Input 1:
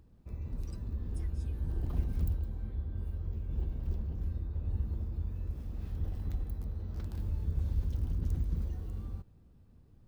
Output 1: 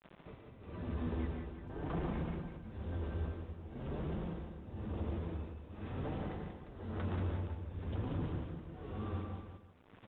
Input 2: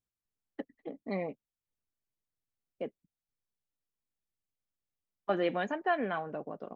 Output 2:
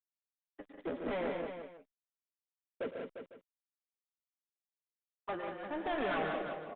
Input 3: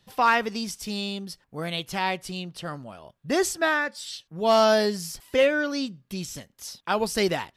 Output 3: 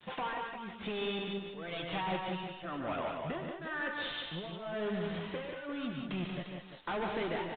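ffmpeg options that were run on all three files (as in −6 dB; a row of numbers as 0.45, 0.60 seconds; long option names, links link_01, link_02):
-filter_complex "[0:a]highpass=frequency=84:poles=1,adynamicequalizer=threshold=0.0141:dfrequency=710:dqfactor=0.85:tfrequency=710:tqfactor=0.85:attack=5:release=100:ratio=0.375:range=3:mode=cutabove:tftype=bell,acompressor=threshold=-30dB:ratio=10,asplit=2[link_01][link_02];[link_02]highpass=frequency=720:poles=1,volume=21dB,asoftclip=type=tanh:threshold=-21dB[link_03];[link_01][link_03]amix=inputs=2:normalize=0,lowpass=frequency=1400:poles=1,volume=-6dB,flanger=delay=5.5:depth=6.9:regen=30:speed=0.47:shape=sinusoidal,acrusher=bits=9:mix=0:aa=0.000001,tremolo=f=0.99:d=0.95,asoftclip=type=tanh:threshold=-40dB,asplit=2[link_04][link_05];[link_05]aecho=0:1:109|144|185|350|502:0.224|0.473|0.501|0.355|0.133[link_06];[link_04][link_06]amix=inputs=2:normalize=0,aresample=8000,aresample=44100,volume=7dB" -ar 48000 -c:a libopus -b:a 48k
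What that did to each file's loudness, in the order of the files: −4.5, −3.5, −12.5 LU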